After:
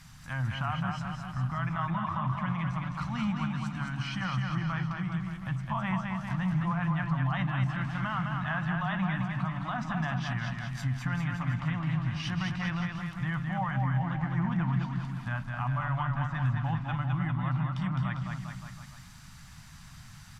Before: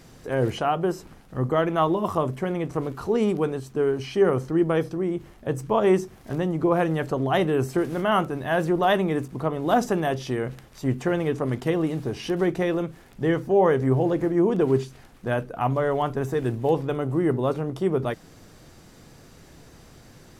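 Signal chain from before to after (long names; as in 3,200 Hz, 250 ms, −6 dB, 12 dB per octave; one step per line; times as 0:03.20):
Chebyshev band-stop filter 160–1,100 Hz, order 2
treble cut that deepens with the level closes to 2,500 Hz, closed at −28 dBFS
brickwall limiter −23.5 dBFS, peak gain reduction 10.5 dB
bouncing-ball delay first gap 210 ms, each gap 0.9×, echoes 5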